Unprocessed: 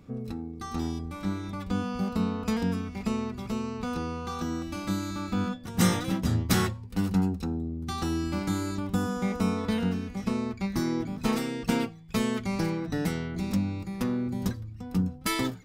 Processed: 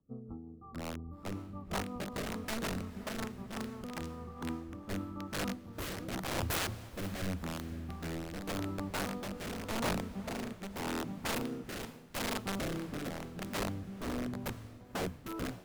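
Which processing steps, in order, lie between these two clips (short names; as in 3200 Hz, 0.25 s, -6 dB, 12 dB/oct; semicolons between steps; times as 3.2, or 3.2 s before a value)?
brick-wall FIR band-stop 1400–11000 Hz; high shelf 6800 Hz -6.5 dB; wrapped overs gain 23.5 dB; rotary speaker horn 5.5 Hz, later 0.85 Hz, at 3.86; diffused feedback echo 0.525 s, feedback 53%, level -12 dB; three-band expander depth 70%; gain -5.5 dB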